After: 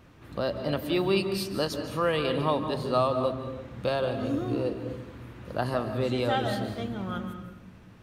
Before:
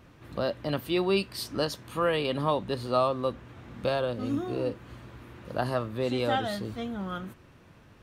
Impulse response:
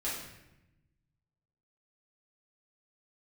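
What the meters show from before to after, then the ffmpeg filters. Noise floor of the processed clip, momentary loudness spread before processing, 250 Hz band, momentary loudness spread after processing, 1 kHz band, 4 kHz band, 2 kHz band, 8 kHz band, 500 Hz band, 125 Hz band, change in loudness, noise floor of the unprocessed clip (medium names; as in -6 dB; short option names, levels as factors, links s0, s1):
-51 dBFS, 17 LU, +1.5 dB, 12 LU, +0.5 dB, +0.5 dB, +0.5 dB, no reading, +1.0 dB, +2.5 dB, +1.0 dB, -56 dBFS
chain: -filter_complex "[0:a]asplit=2[s0][s1];[s1]lowshelf=f=430:g=7[s2];[1:a]atrim=start_sample=2205,adelay=143[s3];[s2][s3]afir=irnorm=-1:irlink=0,volume=0.224[s4];[s0][s4]amix=inputs=2:normalize=0"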